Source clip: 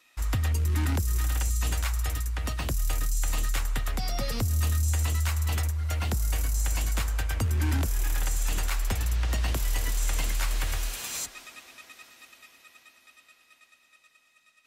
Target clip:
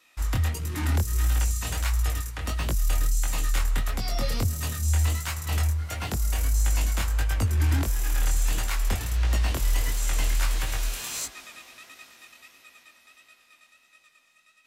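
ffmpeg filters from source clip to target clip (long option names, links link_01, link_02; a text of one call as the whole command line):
ffmpeg -i in.wav -af "flanger=delay=18:depth=6.6:speed=1.5,volume=4.5dB" out.wav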